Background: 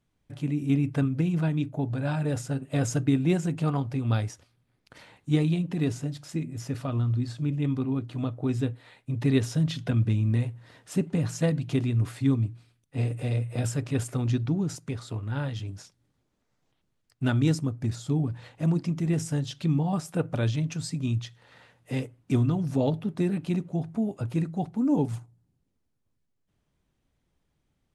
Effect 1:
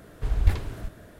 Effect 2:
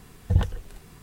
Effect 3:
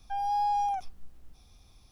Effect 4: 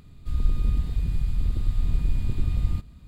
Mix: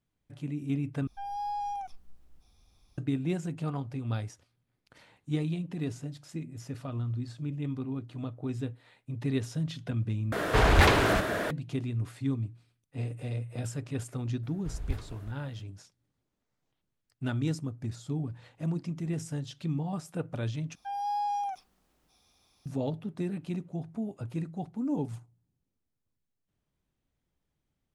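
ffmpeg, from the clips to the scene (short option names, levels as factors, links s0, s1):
-filter_complex "[3:a]asplit=2[s0][s1];[1:a]asplit=2[s2][s3];[0:a]volume=0.447[s4];[s2]asplit=2[s5][s6];[s6]highpass=f=720:p=1,volume=50.1,asoftclip=type=tanh:threshold=0.501[s7];[s5][s7]amix=inputs=2:normalize=0,lowpass=f=2900:p=1,volume=0.501[s8];[s1]highpass=f=370:p=1[s9];[s4]asplit=4[s10][s11][s12][s13];[s10]atrim=end=1.074[s14];[s0]atrim=end=1.91,asetpts=PTS-STARTPTS,volume=0.473[s15];[s11]atrim=start=2.976:end=10.324[s16];[s8]atrim=end=1.19,asetpts=PTS-STARTPTS,volume=0.708[s17];[s12]atrim=start=11.506:end=20.754[s18];[s9]atrim=end=1.91,asetpts=PTS-STARTPTS,volume=0.75[s19];[s13]atrim=start=22.656[s20];[s3]atrim=end=1.19,asetpts=PTS-STARTPTS,volume=0.237,afade=t=in:d=0.004:c=hsin,afade=t=out:st=1.186:d=0.004:c=hsin,adelay=14430[s21];[s14][s15]acrossfade=d=0.004:c1=hsin:c2=hsin[s22];[s22][s16]acrossfade=d=0.004:c1=hsin:c2=hsin[s23];[s23][s17]acrossfade=d=0.004:c1=hsin:c2=hsin[s24];[s24][s18]acrossfade=d=0.004:c1=hsin:c2=hsin[s25];[s25][s19]acrossfade=d=0.004:c1=hsin:c2=hsin[s26];[s26][s20]acrossfade=d=0.004:c1=hsin:c2=hsin[s27];[s27][s21]amix=inputs=2:normalize=0"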